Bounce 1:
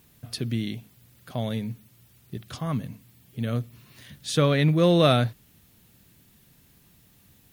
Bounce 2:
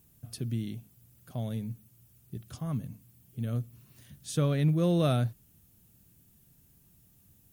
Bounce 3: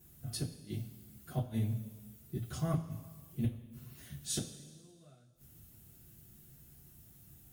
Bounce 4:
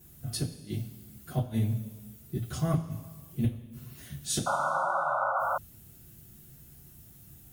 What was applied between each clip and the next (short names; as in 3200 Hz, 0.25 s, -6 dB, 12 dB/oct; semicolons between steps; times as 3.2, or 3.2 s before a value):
graphic EQ 250/500/1000/2000/4000 Hz -3/-5/-6/-9/-9 dB; gain -2.5 dB
flipped gate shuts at -24 dBFS, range -39 dB; two-slope reverb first 0.21 s, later 1.6 s, from -18 dB, DRR -8.5 dB; gain -5 dB
painted sound noise, 4.46–5.58, 530–1500 Hz -34 dBFS; gain +5.5 dB